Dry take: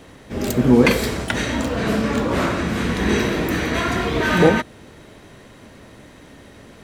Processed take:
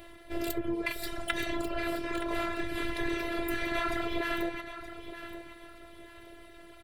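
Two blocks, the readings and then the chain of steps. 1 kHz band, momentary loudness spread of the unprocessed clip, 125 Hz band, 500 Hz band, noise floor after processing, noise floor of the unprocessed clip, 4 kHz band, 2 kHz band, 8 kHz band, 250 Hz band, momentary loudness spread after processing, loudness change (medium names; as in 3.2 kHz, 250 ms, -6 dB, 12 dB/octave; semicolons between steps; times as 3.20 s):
-12.0 dB, 9 LU, -23.0 dB, -15.0 dB, -51 dBFS, -45 dBFS, -11.5 dB, -11.5 dB, -15.0 dB, -15.5 dB, 19 LU, -14.5 dB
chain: reverb removal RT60 1.1 s; compression 6:1, threshold -23 dBFS, peak gain reduction 13.5 dB; feedback delay 922 ms, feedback 29%, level -12 dB; robot voice 339 Hz; fifteen-band graphic EQ 250 Hz -11 dB, 1 kHz -5 dB, 6.3 kHz -12 dB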